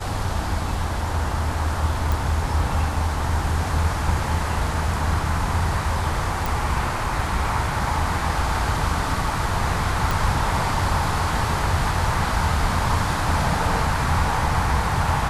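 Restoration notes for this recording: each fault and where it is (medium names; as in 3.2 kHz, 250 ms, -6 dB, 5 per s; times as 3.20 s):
2.12 s: pop
6.46 s: pop
10.11 s: pop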